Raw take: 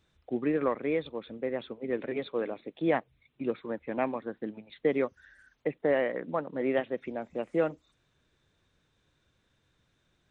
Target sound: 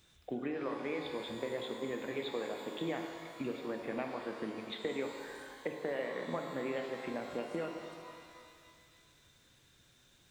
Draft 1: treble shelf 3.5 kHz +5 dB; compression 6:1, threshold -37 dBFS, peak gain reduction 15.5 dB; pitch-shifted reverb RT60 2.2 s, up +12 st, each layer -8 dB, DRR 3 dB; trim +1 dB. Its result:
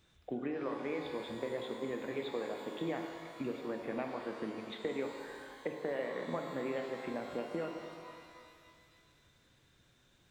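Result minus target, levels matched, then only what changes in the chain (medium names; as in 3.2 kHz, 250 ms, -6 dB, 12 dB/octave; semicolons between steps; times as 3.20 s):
8 kHz band -3.0 dB
change: treble shelf 3.5 kHz +14 dB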